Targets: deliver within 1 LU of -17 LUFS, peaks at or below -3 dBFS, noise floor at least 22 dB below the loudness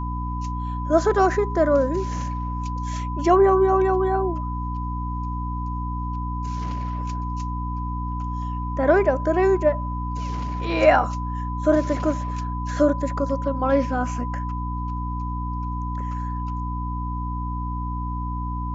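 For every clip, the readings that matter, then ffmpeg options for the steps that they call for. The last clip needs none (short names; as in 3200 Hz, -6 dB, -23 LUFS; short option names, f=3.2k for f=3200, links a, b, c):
hum 60 Hz; harmonics up to 300 Hz; hum level -26 dBFS; steady tone 1000 Hz; tone level -31 dBFS; loudness -24.0 LUFS; peak -4.5 dBFS; loudness target -17.0 LUFS
-> -af "bandreject=f=60:t=h:w=6,bandreject=f=120:t=h:w=6,bandreject=f=180:t=h:w=6,bandreject=f=240:t=h:w=6,bandreject=f=300:t=h:w=6"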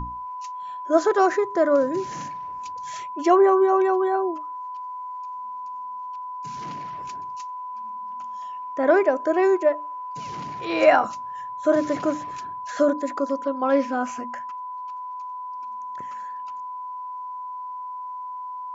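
hum none; steady tone 1000 Hz; tone level -31 dBFS
-> -af "bandreject=f=1k:w=30"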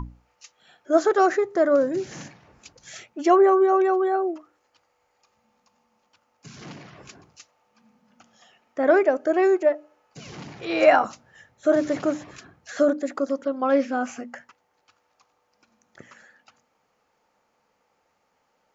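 steady tone none; loudness -21.5 LUFS; peak -4.5 dBFS; loudness target -17.0 LUFS
-> -af "volume=4.5dB,alimiter=limit=-3dB:level=0:latency=1"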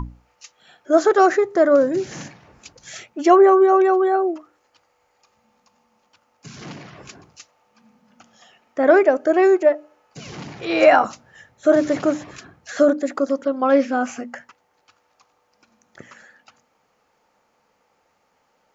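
loudness -17.5 LUFS; peak -3.0 dBFS; noise floor -66 dBFS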